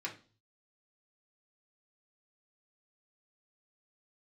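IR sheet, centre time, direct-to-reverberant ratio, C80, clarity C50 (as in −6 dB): 14 ms, −2.5 dB, 18.5 dB, 12.0 dB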